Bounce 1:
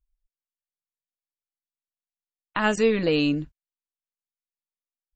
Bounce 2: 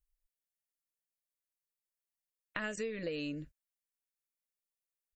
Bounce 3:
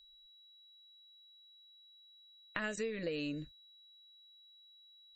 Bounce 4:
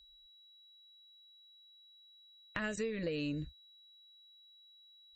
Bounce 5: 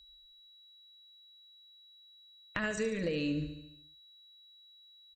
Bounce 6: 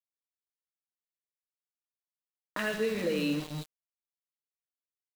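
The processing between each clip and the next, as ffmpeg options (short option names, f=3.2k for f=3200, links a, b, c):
-af "firequalizer=gain_entry='entry(380,0);entry(560,7);entry(810,-9);entry(1800,6);entry(3300,0);entry(6000,5);entry(9600,10)':delay=0.05:min_phase=1,acompressor=threshold=-28dB:ratio=10,volume=-7dB"
-af "aeval=exprs='val(0)+0.00112*sin(2*PI*3900*n/s)':c=same"
-af "equalizer=f=67:t=o:w=1.9:g=14,asoftclip=type=tanh:threshold=-21dB"
-af "aecho=1:1:72|144|216|288|360|432|504:0.316|0.183|0.106|0.0617|0.0358|0.0208|0.012,volume=3dB"
-filter_complex "[0:a]acrossover=split=190|1600[a][b][c];[c]adelay=30[d];[a]adelay=170[e];[e][b][d]amix=inputs=3:normalize=0,afftfilt=real='re*between(b*sr/4096,140,4300)':imag='im*between(b*sr/4096,140,4300)':win_size=4096:overlap=0.75,aeval=exprs='val(0)*gte(abs(val(0)),0.00841)':c=same,volume=4.5dB"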